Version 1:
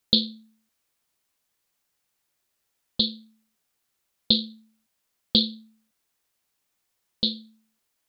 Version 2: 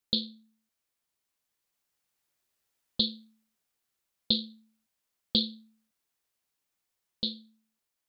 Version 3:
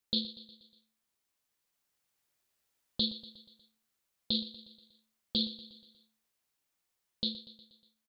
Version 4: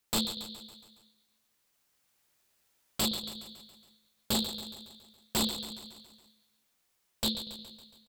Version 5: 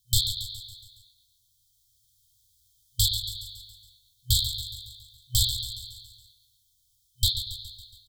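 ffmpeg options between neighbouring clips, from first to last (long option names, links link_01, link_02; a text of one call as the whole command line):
ffmpeg -i in.wav -af "dynaudnorm=framelen=580:gausssize=5:maxgain=11.5dB,volume=-8.5dB" out.wav
ffmpeg -i in.wav -af "alimiter=limit=-18.5dB:level=0:latency=1:release=20,aecho=1:1:120|240|360|480|600:0.178|0.0978|0.0538|0.0296|0.0163" out.wav
ffmpeg -i in.wav -af "aeval=exprs='0.0335*(abs(mod(val(0)/0.0335+3,4)-2)-1)':channel_layout=same,aecho=1:1:139|278|417|556|695|834:0.266|0.152|0.0864|0.0493|0.0281|0.016,volume=7dB" out.wav
ffmpeg -i in.wav -af "afftfilt=real='re*(1-between(b*sr/4096,120,3100))':imag='im*(1-between(b*sr/4096,120,3100))':win_size=4096:overlap=0.75,lowshelf=frequency=440:gain=11.5,volume=7dB" out.wav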